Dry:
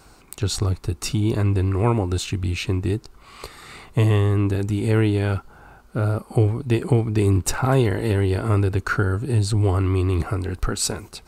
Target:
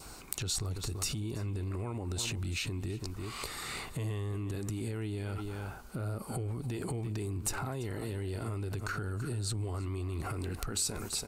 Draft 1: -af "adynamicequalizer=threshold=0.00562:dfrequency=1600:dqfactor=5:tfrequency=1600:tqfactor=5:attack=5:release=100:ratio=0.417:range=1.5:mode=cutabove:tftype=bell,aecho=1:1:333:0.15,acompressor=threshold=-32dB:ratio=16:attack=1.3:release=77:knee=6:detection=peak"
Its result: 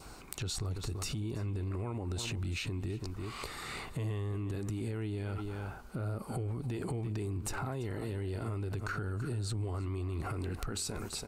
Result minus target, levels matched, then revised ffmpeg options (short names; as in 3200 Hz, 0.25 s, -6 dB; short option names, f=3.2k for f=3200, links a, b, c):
8000 Hz band -5.0 dB
-af "adynamicequalizer=threshold=0.00562:dfrequency=1600:dqfactor=5:tfrequency=1600:tqfactor=5:attack=5:release=100:ratio=0.417:range=1.5:mode=cutabove:tftype=bell,aecho=1:1:333:0.15,acompressor=threshold=-32dB:ratio=16:attack=1.3:release=77:knee=6:detection=peak,highshelf=f=4.5k:g=8"